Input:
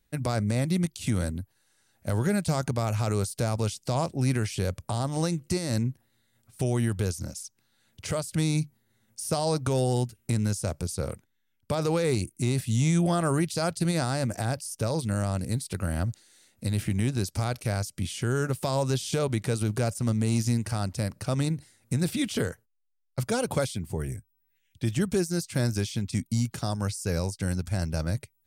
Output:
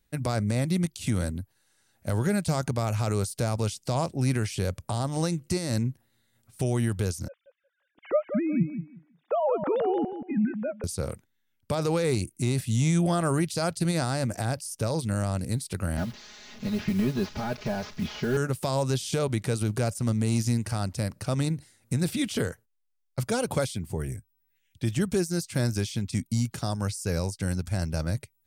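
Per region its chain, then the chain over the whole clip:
7.28–10.84 s: formants replaced by sine waves + low-pass 1.8 kHz + feedback delay 179 ms, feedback 18%, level -9.5 dB
15.97–18.37 s: one-bit delta coder 32 kbps, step -42.5 dBFS + comb 4.8 ms, depth 89% + modulation noise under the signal 26 dB
whole clip: none

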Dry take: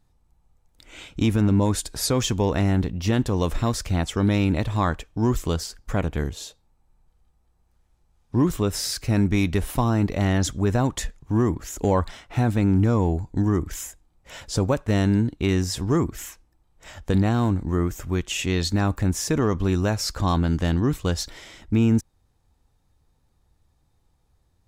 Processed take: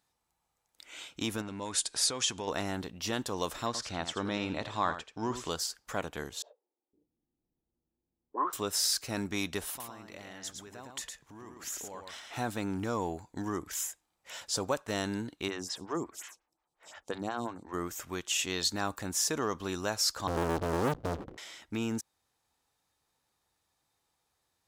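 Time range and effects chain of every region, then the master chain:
1.41–2.48 s: steep low-pass 11 kHz 96 dB/octave + peaking EQ 2.5 kHz +4.5 dB 1.2 oct + compression, threshold -21 dBFS
3.66–5.50 s: distance through air 89 m + delay 83 ms -10.5 dB + tape noise reduction on one side only encoder only
6.42–8.53 s: bands offset in time highs, lows 510 ms, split 370 Hz + touch-sensitive low-pass 290–1200 Hz up, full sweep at -31 dBFS
9.69–12.36 s: compression, threshold -33 dBFS + delay 109 ms -5 dB
15.48–17.74 s: low-pass 9.3 kHz + lamp-driven phase shifter 5.6 Hz
20.27–21.38 s: comb filter that takes the minimum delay 1 ms + steep low-pass 520 Hz 72 dB/octave + waveshaping leveller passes 5
whole clip: high-pass 1.2 kHz 6 dB/octave; dynamic bell 2.2 kHz, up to -6 dB, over -49 dBFS, Q 1.7

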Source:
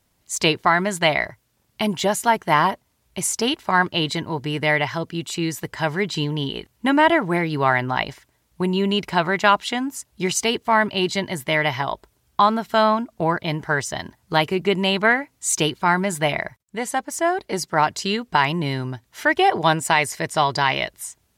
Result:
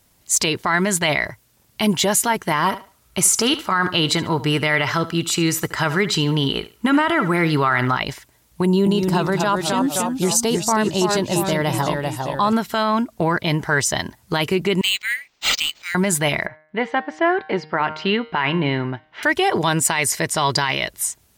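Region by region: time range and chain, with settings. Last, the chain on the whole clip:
2.66–8.00 s: peaking EQ 1.3 kHz +10.5 dB 0.25 oct + thinning echo 72 ms, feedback 22%, high-pass 180 Hz, level -16.5 dB
8.65–12.53 s: peaking EQ 2.3 kHz -14 dB 1.2 oct + band-stop 6.9 kHz, Q 25 + ever faster or slower copies 212 ms, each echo -1 st, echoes 3, each echo -6 dB
14.81–15.95 s: steep high-pass 2.2 kHz + decimation joined by straight lines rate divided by 4×
16.46–19.23 s: low-pass 3 kHz 24 dB/octave + peaking EQ 66 Hz -14 dB 1.4 oct + de-hum 154.7 Hz, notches 36
whole clip: dynamic bell 730 Hz, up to -5 dB, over -31 dBFS, Q 2.4; peak limiter -15 dBFS; treble shelf 5.6 kHz +5.5 dB; trim +6 dB

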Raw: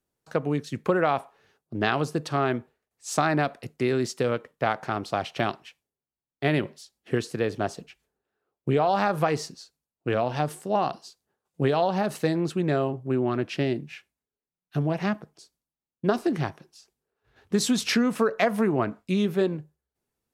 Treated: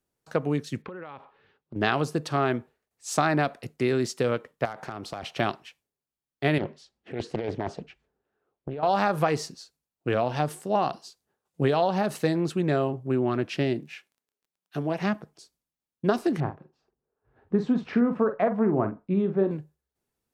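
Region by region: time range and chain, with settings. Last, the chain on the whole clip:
0.82–1.76 s: low-pass 3.8 kHz 24 dB/octave + band-stop 690 Hz, Q 5.6 + compression 16:1, threshold -35 dBFS
4.65–5.23 s: high-pass 41 Hz 24 dB/octave + hard clipper -15 dBFS + compression 12:1, threshold -30 dBFS
6.58–8.83 s: compressor with a negative ratio -29 dBFS + tape spacing loss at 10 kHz 21 dB + loudspeaker Doppler distortion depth 0.59 ms
13.79–14.98 s: high-pass 210 Hz + crackle 21 per s -55 dBFS
16.40–19.51 s: low-pass 1.1 kHz + doubling 46 ms -9 dB
whole clip: none

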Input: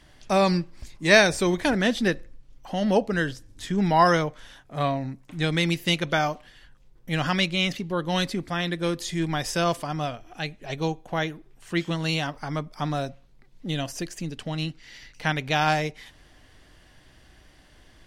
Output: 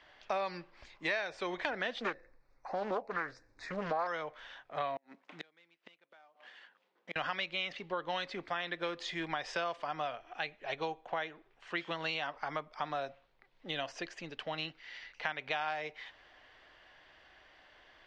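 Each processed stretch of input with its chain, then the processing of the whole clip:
2.00–4.07 s: Butterworth band-stop 3.1 kHz, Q 1.8 + loudspeaker Doppler distortion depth 0.51 ms
4.96–7.16 s: dead-time distortion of 0.062 ms + inverted gate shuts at -20 dBFS, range -36 dB + brick-wall FIR high-pass 160 Hz
whole clip: low-pass 7.2 kHz 24 dB/octave; three-band isolator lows -20 dB, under 470 Hz, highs -20 dB, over 3.8 kHz; compression 8:1, threshold -32 dBFS

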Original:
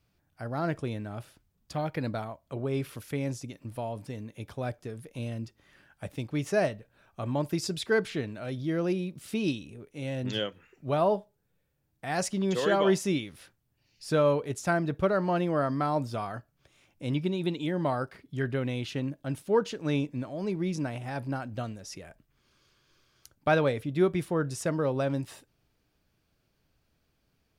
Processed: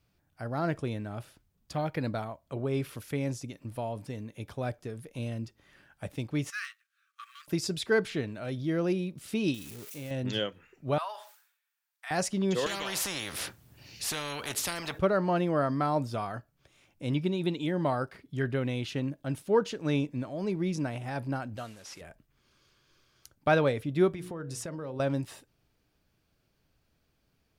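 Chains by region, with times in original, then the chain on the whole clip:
6.50–7.48 s: companding laws mixed up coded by A + brick-wall FIR high-pass 1.1 kHz + treble shelf 9.9 kHz -5.5 dB
9.54–10.11 s: zero-crossing glitches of -34 dBFS + compression 4:1, threshold -37 dBFS + short-mantissa float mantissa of 2-bit
10.98–12.11 s: high-pass 1.1 kHz 24 dB/octave + decay stretcher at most 90 dB/s
12.66–14.99 s: high-pass 56 Hz + compression 1.5:1, threshold -32 dBFS + spectrum-flattening compressor 4:1
21.57–22.01 s: one-bit delta coder 64 kbps, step -48.5 dBFS + bass shelf 450 Hz -10.5 dB
24.10–25.00 s: hum notches 60/120/180/240/300/360/420/480/540 Hz + compression 10:1, threshold -34 dBFS
whole clip: none

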